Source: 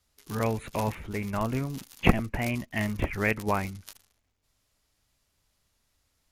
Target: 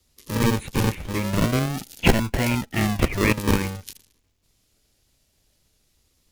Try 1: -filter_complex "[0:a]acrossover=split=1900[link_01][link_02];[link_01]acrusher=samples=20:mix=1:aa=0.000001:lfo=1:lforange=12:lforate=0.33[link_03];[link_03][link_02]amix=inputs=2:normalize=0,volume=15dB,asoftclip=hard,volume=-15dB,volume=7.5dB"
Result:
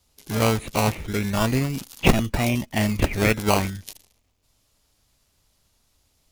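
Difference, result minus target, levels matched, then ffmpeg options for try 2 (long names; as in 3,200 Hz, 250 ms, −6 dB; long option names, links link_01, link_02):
sample-and-hold swept by an LFO: distortion −6 dB
-filter_complex "[0:a]acrossover=split=1900[link_01][link_02];[link_01]acrusher=samples=51:mix=1:aa=0.000001:lfo=1:lforange=30.6:lforate=0.33[link_03];[link_03][link_02]amix=inputs=2:normalize=0,volume=15dB,asoftclip=hard,volume=-15dB,volume=7.5dB"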